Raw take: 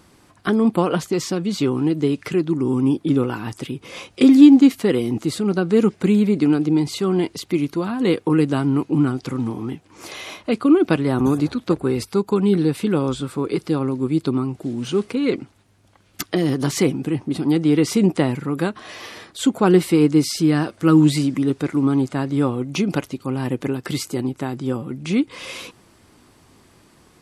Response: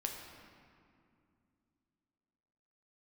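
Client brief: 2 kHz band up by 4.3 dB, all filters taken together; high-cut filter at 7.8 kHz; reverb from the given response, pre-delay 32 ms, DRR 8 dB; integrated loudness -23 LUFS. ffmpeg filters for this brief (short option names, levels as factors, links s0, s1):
-filter_complex "[0:a]lowpass=7800,equalizer=f=2000:t=o:g=5.5,asplit=2[s0][s1];[1:a]atrim=start_sample=2205,adelay=32[s2];[s1][s2]afir=irnorm=-1:irlink=0,volume=0.376[s3];[s0][s3]amix=inputs=2:normalize=0,volume=0.596"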